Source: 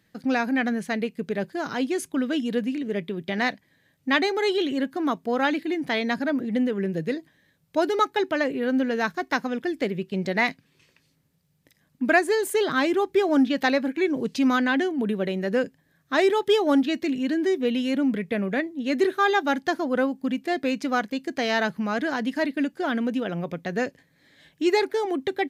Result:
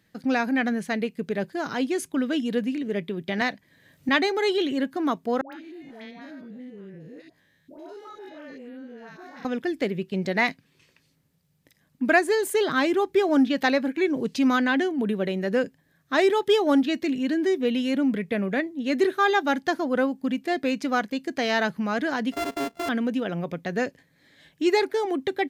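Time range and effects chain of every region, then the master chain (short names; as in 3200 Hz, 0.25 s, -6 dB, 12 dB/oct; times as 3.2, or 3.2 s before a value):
3.41–4.09 notch 810 Hz, Q 22 + three-band squash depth 70%
5.41–9.45 stepped spectrum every 0.1 s + compressor 4:1, threshold -42 dBFS + dispersion highs, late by 0.118 s, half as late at 850 Hz
22.32–22.89 sample sorter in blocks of 64 samples + high shelf 4500 Hz -6 dB + compressor 2:1, threshold -27 dBFS
whole clip: dry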